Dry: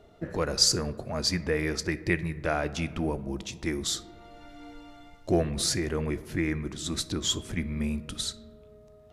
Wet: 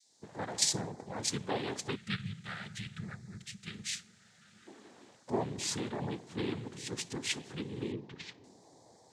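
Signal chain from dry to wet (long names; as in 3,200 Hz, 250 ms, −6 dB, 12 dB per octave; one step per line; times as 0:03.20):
fade in at the beginning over 0.57 s
steady tone 5,100 Hz −60 dBFS
cochlear-implant simulation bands 6
0:01.96–0:04.67: gain on a spectral selection 220–1,200 Hz −18 dB
0:07.92–0:08.44: high-frequency loss of the air 220 metres
level −7 dB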